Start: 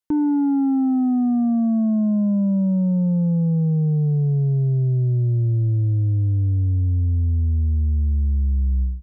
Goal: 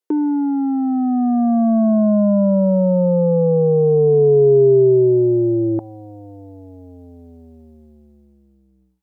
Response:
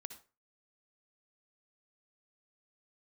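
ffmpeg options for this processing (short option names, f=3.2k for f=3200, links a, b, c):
-af "dynaudnorm=f=270:g=11:m=14dB,asetnsamples=n=441:p=0,asendcmd='5.79 highpass f 810',highpass=f=400:t=q:w=4.9"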